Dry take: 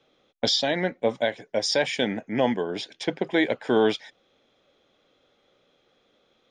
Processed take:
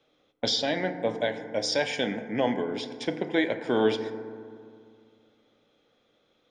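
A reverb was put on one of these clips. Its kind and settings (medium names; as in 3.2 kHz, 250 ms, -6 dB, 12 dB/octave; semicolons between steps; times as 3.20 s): FDN reverb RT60 2.2 s, low-frequency decay 1.25×, high-frequency decay 0.3×, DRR 8 dB; trim -3.5 dB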